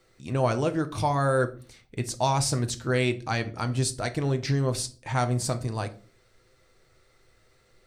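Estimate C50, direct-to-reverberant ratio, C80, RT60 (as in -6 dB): 17.5 dB, 7.0 dB, 22.5 dB, 0.40 s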